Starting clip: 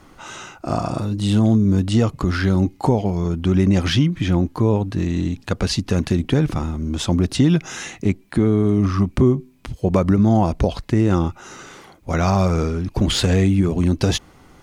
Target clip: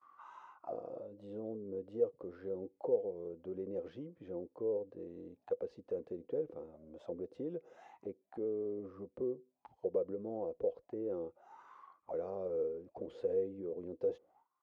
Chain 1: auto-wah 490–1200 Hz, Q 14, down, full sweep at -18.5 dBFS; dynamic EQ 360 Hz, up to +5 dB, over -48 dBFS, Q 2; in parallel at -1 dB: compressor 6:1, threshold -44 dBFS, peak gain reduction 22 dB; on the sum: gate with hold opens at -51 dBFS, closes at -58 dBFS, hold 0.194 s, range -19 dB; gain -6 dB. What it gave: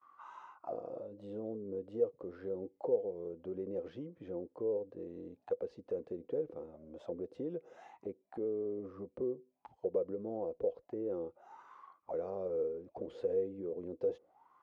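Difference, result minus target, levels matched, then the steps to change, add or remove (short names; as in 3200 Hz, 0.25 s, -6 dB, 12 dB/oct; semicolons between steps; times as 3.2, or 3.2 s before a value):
compressor: peak gain reduction -9 dB
change: compressor 6:1, threshold -55 dBFS, peak gain reduction 31 dB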